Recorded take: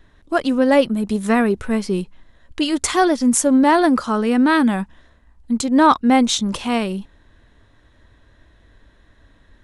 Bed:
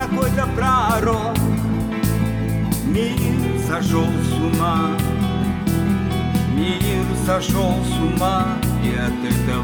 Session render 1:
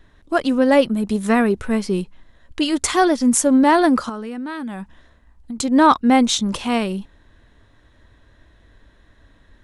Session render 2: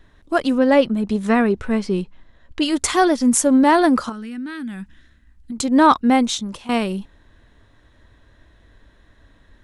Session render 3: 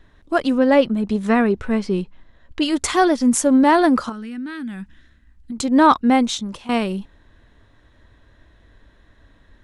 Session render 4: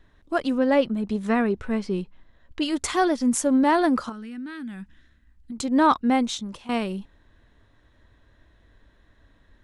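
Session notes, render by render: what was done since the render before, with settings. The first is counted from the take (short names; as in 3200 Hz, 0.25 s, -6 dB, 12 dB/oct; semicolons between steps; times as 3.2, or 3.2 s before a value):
4.09–5.58 compressor 8:1, threshold -26 dBFS
0.58–2.62 air absorption 62 m; 4.12–5.52 band shelf 690 Hz -12 dB; 6.02–6.69 fade out, to -14.5 dB
high shelf 7700 Hz -5.5 dB
gain -5.5 dB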